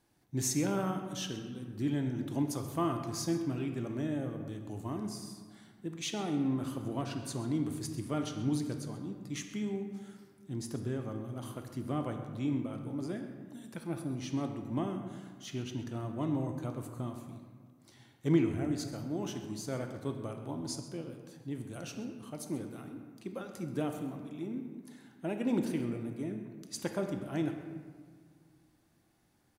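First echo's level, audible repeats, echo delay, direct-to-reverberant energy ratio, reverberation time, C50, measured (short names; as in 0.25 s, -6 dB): -16.0 dB, 1, 0.131 s, 4.5 dB, 1.9 s, 6.0 dB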